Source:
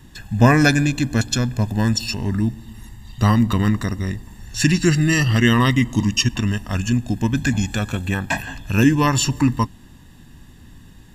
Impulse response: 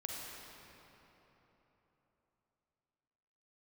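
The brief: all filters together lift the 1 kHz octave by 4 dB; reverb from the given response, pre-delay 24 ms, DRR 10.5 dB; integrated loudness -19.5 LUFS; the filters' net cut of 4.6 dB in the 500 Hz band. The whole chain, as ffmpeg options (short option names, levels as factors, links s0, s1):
-filter_complex "[0:a]equalizer=f=500:t=o:g=-8.5,equalizer=f=1000:t=o:g=6.5,asplit=2[s0][s1];[1:a]atrim=start_sample=2205,adelay=24[s2];[s1][s2]afir=irnorm=-1:irlink=0,volume=0.282[s3];[s0][s3]amix=inputs=2:normalize=0,volume=0.944"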